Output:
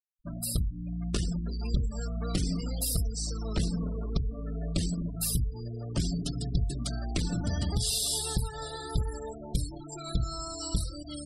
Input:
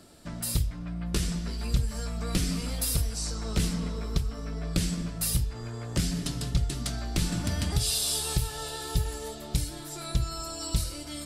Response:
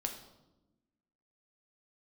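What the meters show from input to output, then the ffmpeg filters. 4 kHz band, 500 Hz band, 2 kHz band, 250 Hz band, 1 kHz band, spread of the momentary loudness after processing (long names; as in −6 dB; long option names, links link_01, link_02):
−3.0 dB, −1.0 dB, −7.0 dB, −0.5 dB, −2.5 dB, 6 LU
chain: -af "adynamicequalizer=threshold=0.00316:dfrequency=2400:dqfactor=1.8:tfrequency=2400:tqfactor=1.8:attack=5:release=100:ratio=0.375:range=1.5:mode=cutabove:tftype=bell,aeval=exprs='clip(val(0),-1,0.0501)':channel_layout=same,afftfilt=real='re*gte(hypot(re,im),0.02)':imag='im*gte(hypot(re,im),0.02)':win_size=1024:overlap=0.75"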